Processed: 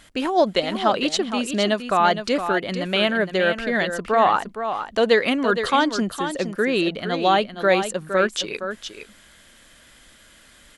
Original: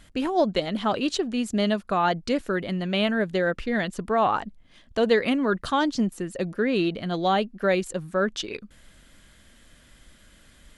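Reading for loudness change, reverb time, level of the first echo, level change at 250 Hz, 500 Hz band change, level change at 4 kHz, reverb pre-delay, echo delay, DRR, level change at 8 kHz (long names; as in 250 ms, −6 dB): +4.0 dB, no reverb audible, −9.0 dB, +1.0 dB, +4.0 dB, +6.5 dB, no reverb audible, 464 ms, no reverb audible, +6.5 dB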